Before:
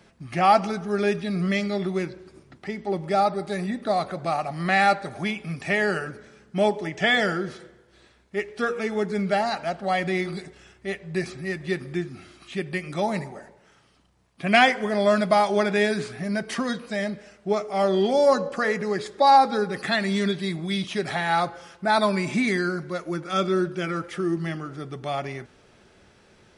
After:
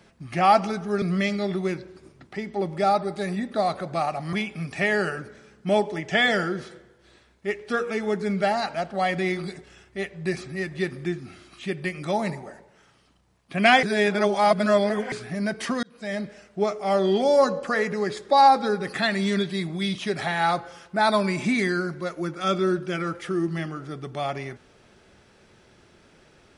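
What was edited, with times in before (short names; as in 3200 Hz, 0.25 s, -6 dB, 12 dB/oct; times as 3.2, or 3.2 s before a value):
1.02–1.33 cut
4.64–5.22 cut
14.72–16.01 reverse
16.72–17.11 fade in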